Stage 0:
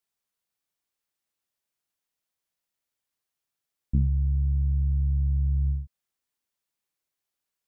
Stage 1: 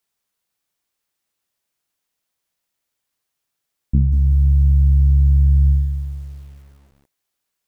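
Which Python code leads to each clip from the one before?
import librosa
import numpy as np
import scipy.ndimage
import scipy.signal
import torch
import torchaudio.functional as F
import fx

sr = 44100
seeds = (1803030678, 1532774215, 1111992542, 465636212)

y = fx.echo_crushed(x, sr, ms=187, feedback_pct=55, bits=9, wet_db=-10)
y = y * librosa.db_to_amplitude(7.5)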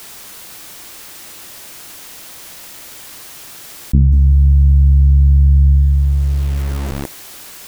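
y = fx.peak_eq(x, sr, hz=320.0, db=3.5, octaves=0.3)
y = fx.env_flatten(y, sr, amount_pct=70)
y = y * librosa.db_to_amplitude(3.5)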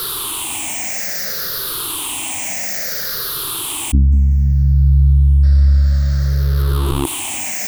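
y = fx.spec_ripple(x, sr, per_octave=0.61, drift_hz=-0.6, depth_db=17)
y = fx.spec_repair(y, sr, seeds[0], start_s=5.46, length_s=0.87, low_hz=540.0, high_hz=5700.0, source='after')
y = fx.env_flatten(y, sr, amount_pct=50)
y = y * librosa.db_to_amplitude(-5.0)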